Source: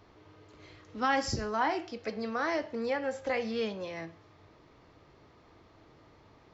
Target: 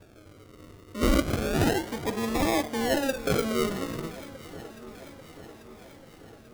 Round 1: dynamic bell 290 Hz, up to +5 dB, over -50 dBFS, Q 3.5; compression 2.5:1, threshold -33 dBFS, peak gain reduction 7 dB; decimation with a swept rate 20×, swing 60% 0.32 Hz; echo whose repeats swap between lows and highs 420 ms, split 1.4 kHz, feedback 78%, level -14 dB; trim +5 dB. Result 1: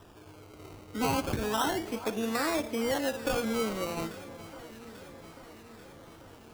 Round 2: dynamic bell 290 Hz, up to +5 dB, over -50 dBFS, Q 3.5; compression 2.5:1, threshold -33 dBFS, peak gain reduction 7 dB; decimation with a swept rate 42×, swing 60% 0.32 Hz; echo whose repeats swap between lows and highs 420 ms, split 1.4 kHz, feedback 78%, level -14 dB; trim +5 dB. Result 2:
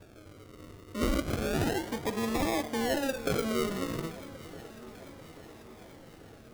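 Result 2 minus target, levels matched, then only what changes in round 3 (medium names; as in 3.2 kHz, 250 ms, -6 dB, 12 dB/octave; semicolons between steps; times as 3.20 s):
compression: peak gain reduction +7 dB
remove: compression 2.5:1, threshold -33 dBFS, peak gain reduction 7 dB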